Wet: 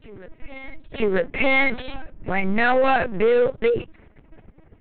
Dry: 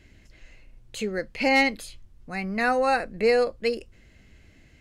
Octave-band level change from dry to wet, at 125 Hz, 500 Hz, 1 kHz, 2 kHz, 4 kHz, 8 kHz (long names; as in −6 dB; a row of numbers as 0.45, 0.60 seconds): +7.0 dB, +4.5 dB, +2.5 dB, +4.0 dB, −0.5 dB, below −35 dB